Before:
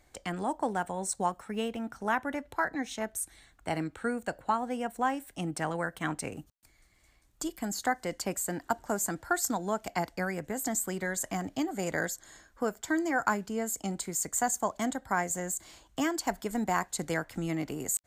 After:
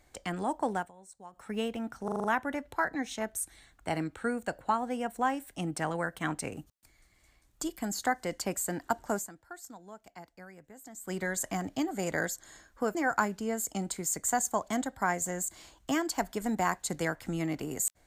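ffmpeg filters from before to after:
-filter_complex "[0:a]asplit=11[a][b][c][d][e][f][g][h][i][j][k];[a]atrim=end=0.91,asetpts=PTS-STARTPTS,afade=t=out:st=0.76:d=0.15:silence=0.105925[l];[b]atrim=start=0.91:end=1.32,asetpts=PTS-STARTPTS,volume=-19.5dB[m];[c]atrim=start=1.32:end=2.082,asetpts=PTS-STARTPTS,afade=t=in:d=0.15:silence=0.105925[n];[d]atrim=start=2.038:end=2.082[o];[e]atrim=start=2.038:end=2.082[p];[f]atrim=start=2.038:end=2.082[q];[g]atrim=start=2.038:end=2.082[r];[h]atrim=start=2.038:end=9.45,asetpts=PTS-STARTPTS,afade=t=out:st=6.942:d=0.47:c=exp:silence=0.141254[s];[i]atrim=start=9.45:end=10.44,asetpts=PTS-STARTPTS,volume=-17dB[t];[j]atrim=start=10.44:end=12.752,asetpts=PTS-STARTPTS,afade=t=in:d=0.47:c=exp:silence=0.141254[u];[k]atrim=start=13.038[v];[l][m][n]concat=n=3:v=0:a=1[w];[w][o]acrossfade=d=0.004:c1=hsin:c2=hsin[x];[x][p]acrossfade=d=0.004:c1=hsin:c2=hsin[y];[y][q]acrossfade=d=0.004:c1=hsin:c2=hsin[z];[z][r]acrossfade=d=0.004:c1=hsin:c2=hsin[aa];[s][t][u]concat=n=3:v=0:a=1[ab];[aa][ab]acrossfade=d=0.004:c1=hsin:c2=hsin[ac];[ac][v]acrossfade=d=0.004:c1=hsin:c2=hsin"

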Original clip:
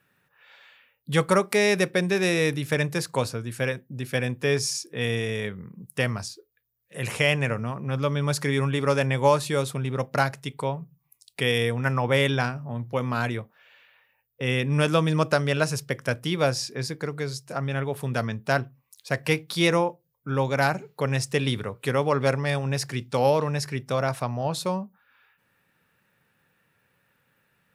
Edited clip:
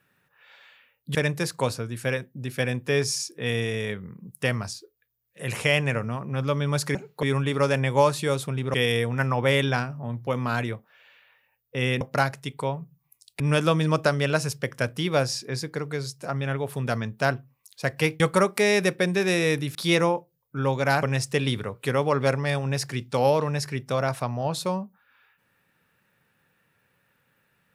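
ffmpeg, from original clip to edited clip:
-filter_complex "[0:a]asplit=10[a][b][c][d][e][f][g][h][i][j];[a]atrim=end=1.152[k];[b]atrim=start=2.698:end=8.502[l];[c]atrim=start=20.748:end=21.032[m];[d]atrim=start=8.498:end=10.012[n];[e]atrim=start=11.398:end=14.672[o];[f]atrim=start=10.008:end=11.402[p];[g]atrim=start=14.668:end=19.472[q];[h]atrim=start=1.148:end=2.702[r];[i]atrim=start=19.468:end=20.752[s];[j]atrim=start=21.028[t];[k][l]acrossfade=d=0.004:c1=hsin:c2=hsin[u];[u][m]acrossfade=d=0.004:c1=hsin:c2=hsin[v];[v][n]acrossfade=d=0.004:c1=hsin:c2=hsin[w];[w][o]acrossfade=d=0.004:c1=hsin:c2=hsin[x];[x][p]acrossfade=d=0.004:c1=hsin:c2=hsin[y];[y][q]acrossfade=d=0.004:c1=hsin:c2=hsin[z];[z][r]acrossfade=d=0.004:c1=hsin:c2=hsin[aa];[aa][s]acrossfade=d=0.004:c1=hsin:c2=hsin[ab];[ab][t]acrossfade=d=0.004:c1=hsin:c2=hsin"

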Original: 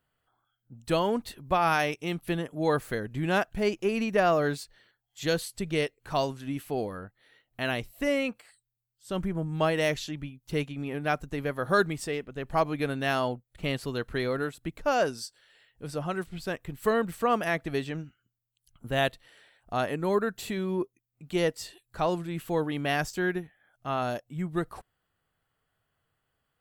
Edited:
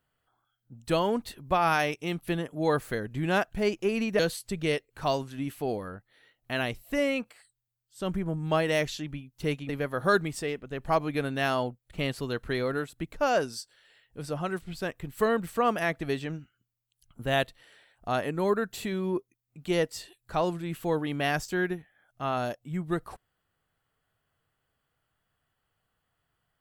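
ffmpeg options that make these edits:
-filter_complex "[0:a]asplit=3[a][b][c];[a]atrim=end=4.192[d];[b]atrim=start=5.278:end=10.782[e];[c]atrim=start=11.338[f];[d][e]acrossfade=d=0.004:c1=hsin:c2=hsin[g];[g][f]acrossfade=d=0.004:c1=hsin:c2=hsin"

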